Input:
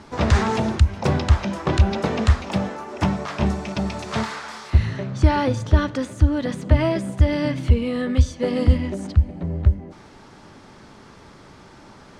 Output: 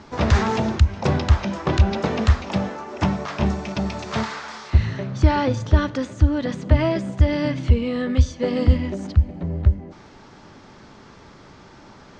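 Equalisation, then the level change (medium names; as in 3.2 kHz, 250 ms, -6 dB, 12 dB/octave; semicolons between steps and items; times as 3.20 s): steep low-pass 7.3 kHz 36 dB/octave; 0.0 dB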